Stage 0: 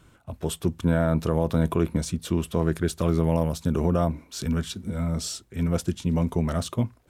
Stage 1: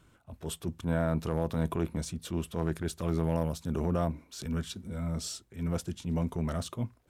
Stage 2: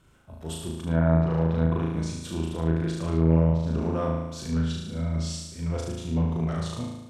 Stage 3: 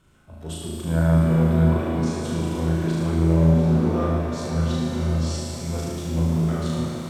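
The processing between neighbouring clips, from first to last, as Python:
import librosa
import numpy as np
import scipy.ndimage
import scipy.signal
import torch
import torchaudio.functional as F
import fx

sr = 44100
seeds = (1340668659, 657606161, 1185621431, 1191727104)

y1 = fx.transient(x, sr, attack_db=-7, sustain_db=-1)
y1 = y1 * 10.0 ** (-5.5 / 20.0)
y2 = fx.room_flutter(y1, sr, wall_m=6.3, rt60_s=1.0)
y2 = fx.env_lowpass_down(y2, sr, base_hz=2400.0, full_db=-17.5)
y3 = fx.rev_shimmer(y2, sr, seeds[0], rt60_s=4.0, semitones=7, shimmer_db=-8, drr_db=0.0)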